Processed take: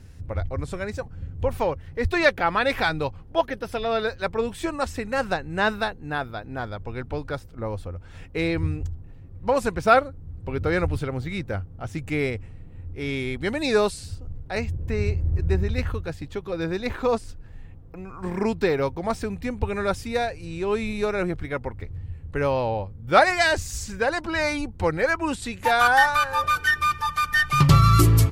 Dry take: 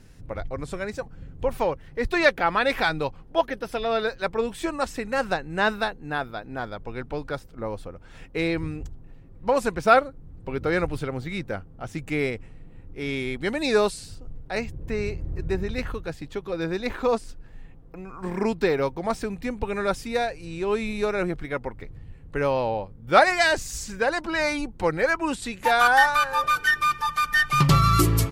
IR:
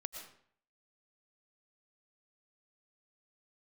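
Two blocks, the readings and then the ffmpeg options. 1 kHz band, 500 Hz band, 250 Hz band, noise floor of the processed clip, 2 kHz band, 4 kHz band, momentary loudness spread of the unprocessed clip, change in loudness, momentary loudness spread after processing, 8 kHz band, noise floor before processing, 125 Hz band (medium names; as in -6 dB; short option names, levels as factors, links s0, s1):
0.0 dB, 0.0 dB, +1.0 dB, -43 dBFS, 0.0 dB, 0.0 dB, 16 LU, +0.5 dB, 15 LU, 0.0 dB, -46 dBFS, +5.0 dB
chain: -af "equalizer=f=84:t=o:w=0.65:g=14.5"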